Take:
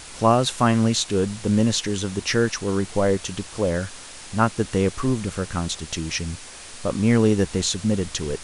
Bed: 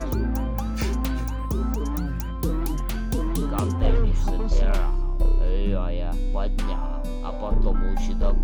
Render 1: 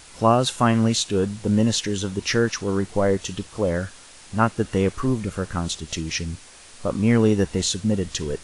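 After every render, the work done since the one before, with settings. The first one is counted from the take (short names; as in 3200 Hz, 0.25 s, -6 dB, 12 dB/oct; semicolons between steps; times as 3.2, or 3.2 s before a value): noise print and reduce 6 dB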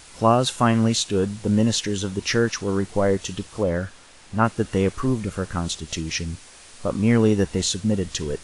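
3.63–4.45 high shelf 4400 Hz -7.5 dB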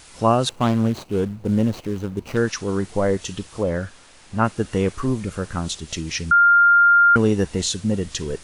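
0.49–2.37 median filter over 25 samples; 6.31–7.16 bleep 1400 Hz -10 dBFS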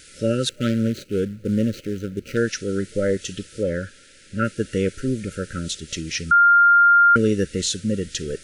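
low shelf 140 Hz -5 dB; FFT band-reject 600–1300 Hz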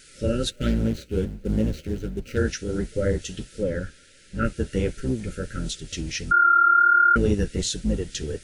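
octaver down 2 oct, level +1 dB; flange 1.4 Hz, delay 4.3 ms, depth 9.3 ms, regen -29%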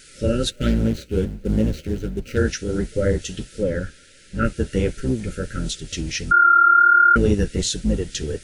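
gain +3.5 dB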